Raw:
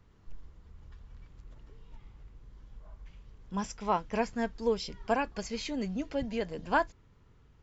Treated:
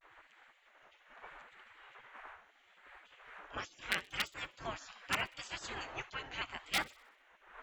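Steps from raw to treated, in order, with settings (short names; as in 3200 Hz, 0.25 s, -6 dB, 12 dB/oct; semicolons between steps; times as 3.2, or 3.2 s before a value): wind noise 180 Hz -43 dBFS; bell 5100 Hz -12.5 dB 0.62 oct; in parallel at -7.5 dB: wrapped overs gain 17 dB; on the sum: gate with hold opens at -42 dBFS; HPF 71 Hz 12 dB/oct; bell 1500 Hz +13 dB 2.8 oct; notches 60/120/180 Hz; on a send: thinning echo 64 ms, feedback 57%, high-pass 800 Hz, level -21 dB; on the sum: spectral gate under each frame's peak -20 dB weak; vibrato 0.77 Hz 78 cents; gain -2 dB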